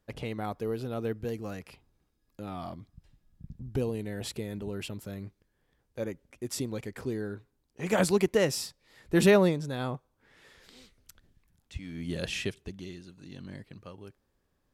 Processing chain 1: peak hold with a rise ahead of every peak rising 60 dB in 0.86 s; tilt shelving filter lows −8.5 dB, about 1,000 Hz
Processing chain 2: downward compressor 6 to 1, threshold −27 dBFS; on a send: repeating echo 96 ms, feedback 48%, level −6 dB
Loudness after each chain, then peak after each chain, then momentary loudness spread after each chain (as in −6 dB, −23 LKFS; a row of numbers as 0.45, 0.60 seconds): −27.5, −35.0 LKFS; −4.5, −16.5 dBFS; 23, 18 LU